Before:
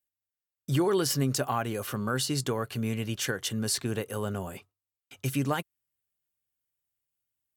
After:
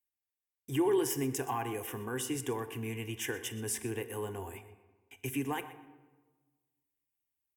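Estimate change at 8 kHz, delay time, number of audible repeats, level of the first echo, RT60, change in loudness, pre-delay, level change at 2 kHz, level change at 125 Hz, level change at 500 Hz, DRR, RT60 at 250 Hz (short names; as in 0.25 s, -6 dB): -5.5 dB, 0.124 s, 1, -16.5 dB, 1.3 s, -5.5 dB, 16 ms, -5.0 dB, -9.5 dB, -3.0 dB, 10.5 dB, 1.5 s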